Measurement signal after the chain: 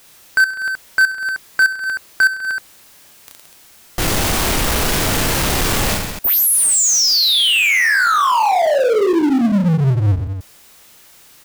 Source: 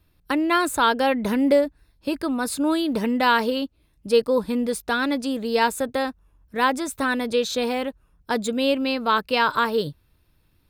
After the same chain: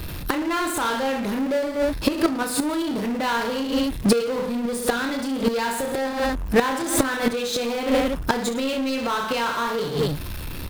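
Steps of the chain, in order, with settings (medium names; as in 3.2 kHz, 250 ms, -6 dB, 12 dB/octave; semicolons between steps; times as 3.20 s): reverse bouncing-ball echo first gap 30 ms, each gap 1.25×, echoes 5; inverted gate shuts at -15 dBFS, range -28 dB; power-law waveshaper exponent 0.5; trim +7 dB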